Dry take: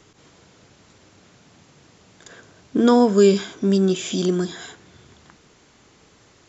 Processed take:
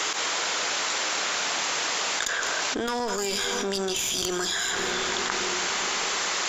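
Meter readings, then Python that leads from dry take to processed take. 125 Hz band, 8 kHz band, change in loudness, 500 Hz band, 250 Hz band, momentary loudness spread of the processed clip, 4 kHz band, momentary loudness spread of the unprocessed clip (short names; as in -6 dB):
-16.0 dB, n/a, -6.5 dB, -10.0 dB, -14.5 dB, 2 LU, +10.0 dB, 12 LU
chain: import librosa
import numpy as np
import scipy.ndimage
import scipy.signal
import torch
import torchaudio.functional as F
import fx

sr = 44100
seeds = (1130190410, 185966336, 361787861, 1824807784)

y = scipy.signal.sosfilt(scipy.signal.butter(2, 830.0, 'highpass', fs=sr, output='sos'), x)
y = fx.dynamic_eq(y, sr, hz=6200.0, q=2.6, threshold_db=-49.0, ratio=4.0, max_db=5)
y = fx.cheby_harmonics(y, sr, harmonics=(3, 4), levels_db=(-17, -16), full_scale_db=-11.0)
y = y + 10.0 ** (-22.5 / 20.0) * np.pad(y, (int(201 * sr / 1000.0), 0))[:len(y)]
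y = fx.rev_plate(y, sr, seeds[0], rt60_s=4.7, hf_ratio=0.3, predelay_ms=0, drr_db=19.5)
y = fx.env_flatten(y, sr, amount_pct=100)
y = F.gain(torch.from_numpy(y), -4.5).numpy()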